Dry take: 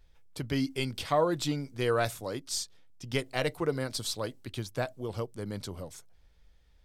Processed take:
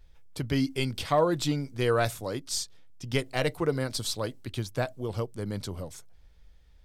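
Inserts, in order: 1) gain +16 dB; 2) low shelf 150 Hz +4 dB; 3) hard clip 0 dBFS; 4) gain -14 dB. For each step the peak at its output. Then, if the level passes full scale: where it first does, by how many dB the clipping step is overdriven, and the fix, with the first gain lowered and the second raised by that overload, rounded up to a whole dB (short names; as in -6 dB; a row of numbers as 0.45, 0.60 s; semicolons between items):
+3.0, +3.0, 0.0, -14.0 dBFS; step 1, 3.0 dB; step 1 +13 dB, step 4 -11 dB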